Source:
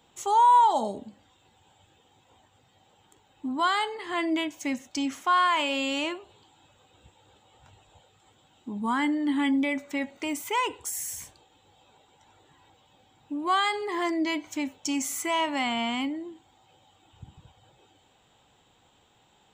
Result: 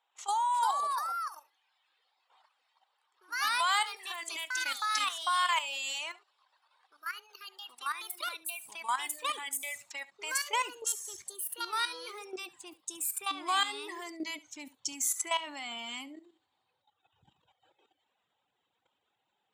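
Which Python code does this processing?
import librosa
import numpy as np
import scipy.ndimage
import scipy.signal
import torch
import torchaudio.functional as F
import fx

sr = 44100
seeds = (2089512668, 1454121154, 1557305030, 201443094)

p1 = fx.env_lowpass(x, sr, base_hz=2300.0, full_db=-25.5)
p2 = fx.dereverb_blind(p1, sr, rt60_s=1.6)
p3 = fx.filter_sweep_highpass(p2, sr, from_hz=840.0, to_hz=74.0, start_s=10.37, end_s=10.96, q=1.2)
p4 = fx.level_steps(p3, sr, step_db=13)
p5 = fx.riaa(p4, sr, side='recording')
p6 = fx.echo_pitch(p5, sr, ms=389, semitones=3, count=2, db_per_echo=-3.0)
p7 = p6 + fx.echo_single(p6, sr, ms=71, db=-20.0, dry=0)
y = p7 * librosa.db_to_amplitude(-2.5)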